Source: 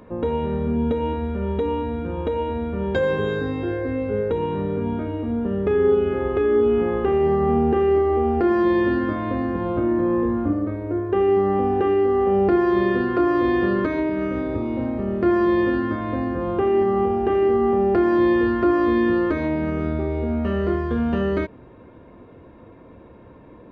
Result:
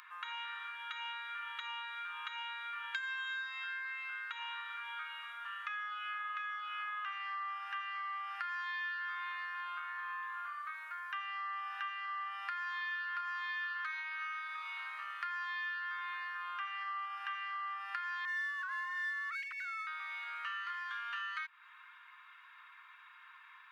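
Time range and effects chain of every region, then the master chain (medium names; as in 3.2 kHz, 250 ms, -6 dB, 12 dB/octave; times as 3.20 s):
18.25–19.87 s: formants replaced by sine waves + sliding maximum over 3 samples
whole clip: steep high-pass 1.2 kHz 48 dB/octave; compression 4:1, threshold -45 dBFS; trim +5.5 dB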